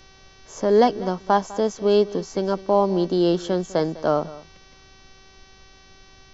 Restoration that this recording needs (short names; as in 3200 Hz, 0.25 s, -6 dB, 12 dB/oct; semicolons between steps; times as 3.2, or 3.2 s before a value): de-hum 383.7 Hz, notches 16; expander -42 dBFS, range -21 dB; inverse comb 0.202 s -18.5 dB